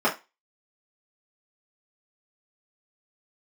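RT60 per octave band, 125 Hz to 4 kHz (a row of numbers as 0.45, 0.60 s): 0.15, 0.25, 0.20, 0.25, 0.25, 0.25 s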